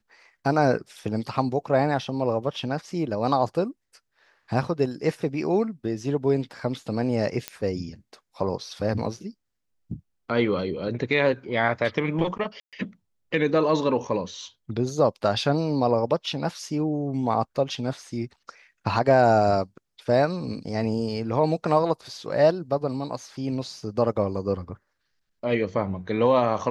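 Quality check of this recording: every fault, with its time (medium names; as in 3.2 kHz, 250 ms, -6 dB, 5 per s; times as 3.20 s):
7.48 s: pop -12 dBFS
12.60–12.73 s: dropout 127 ms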